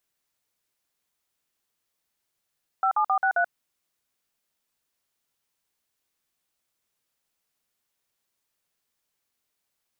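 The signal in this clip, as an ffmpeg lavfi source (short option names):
-f lavfi -i "aevalsrc='0.0794*clip(min(mod(t,0.133),0.083-mod(t,0.133))/0.002,0,1)*(eq(floor(t/0.133),0)*(sin(2*PI*770*mod(t,0.133))+sin(2*PI*1336*mod(t,0.133)))+eq(floor(t/0.133),1)*(sin(2*PI*852*mod(t,0.133))+sin(2*PI*1209*mod(t,0.133)))+eq(floor(t/0.133),2)*(sin(2*PI*770*mod(t,0.133))+sin(2*PI*1209*mod(t,0.133)))+eq(floor(t/0.133),3)*(sin(2*PI*770*mod(t,0.133))+sin(2*PI*1477*mod(t,0.133)))+eq(floor(t/0.133),4)*(sin(2*PI*697*mod(t,0.133))+sin(2*PI*1477*mod(t,0.133))))':d=0.665:s=44100"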